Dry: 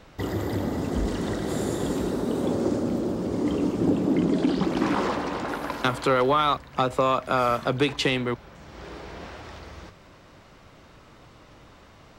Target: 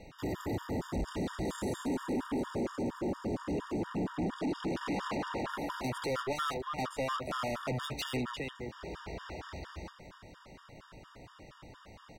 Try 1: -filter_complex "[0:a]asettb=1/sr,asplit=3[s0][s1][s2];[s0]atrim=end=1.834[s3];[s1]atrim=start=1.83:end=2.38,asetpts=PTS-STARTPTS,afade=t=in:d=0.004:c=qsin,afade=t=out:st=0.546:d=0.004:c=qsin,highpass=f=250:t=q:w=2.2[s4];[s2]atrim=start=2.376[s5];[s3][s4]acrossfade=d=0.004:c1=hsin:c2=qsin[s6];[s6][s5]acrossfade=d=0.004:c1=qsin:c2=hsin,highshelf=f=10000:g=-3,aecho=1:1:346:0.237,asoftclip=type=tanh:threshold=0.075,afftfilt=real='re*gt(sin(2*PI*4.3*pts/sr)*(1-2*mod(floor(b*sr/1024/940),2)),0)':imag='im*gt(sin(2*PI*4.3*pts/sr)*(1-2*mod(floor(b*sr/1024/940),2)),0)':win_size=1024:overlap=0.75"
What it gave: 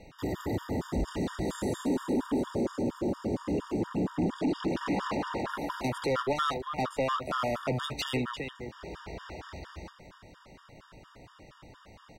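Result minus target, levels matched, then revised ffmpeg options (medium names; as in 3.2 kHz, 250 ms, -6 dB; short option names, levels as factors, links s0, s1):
saturation: distortion -5 dB
-filter_complex "[0:a]asettb=1/sr,asplit=3[s0][s1][s2];[s0]atrim=end=1.834[s3];[s1]atrim=start=1.83:end=2.38,asetpts=PTS-STARTPTS,afade=t=in:d=0.004:c=qsin,afade=t=out:st=0.546:d=0.004:c=qsin,highpass=f=250:t=q:w=2.2[s4];[s2]atrim=start=2.376[s5];[s3][s4]acrossfade=d=0.004:c1=hsin:c2=qsin[s6];[s6][s5]acrossfade=d=0.004:c1=qsin:c2=hsin,highshelf=f=10000:g=-3,aecho=1:1:346:0.237,asoftclip=type=tanh:threshold=0.0335,afftfilt=real='re*gt(sin(2*PI*4.3*pts/sr)*(1-2*mod(floor(b*sr/1024/940),2)),0)':imag='im*gt(sin(2*PI*4.3*pts/sr)*(1-2*mod(floor(b*sr/1024/940),2)),0)':win_size=1024:overlap=0.75"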